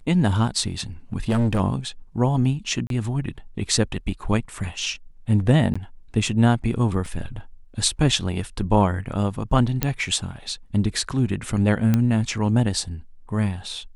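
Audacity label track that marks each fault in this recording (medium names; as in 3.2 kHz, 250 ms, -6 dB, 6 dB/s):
1.130000	1.610000	clipped -16.5 dBFS
2.870000	2.900000	dropout 32 ms
5.740000	5.750000	dropout 15 ms
7.060000	7.060000	dropout 2.5 ms
9.830000	9.830000	pop -5 dBFS
11.940000	11.940000	pop -8 dBFS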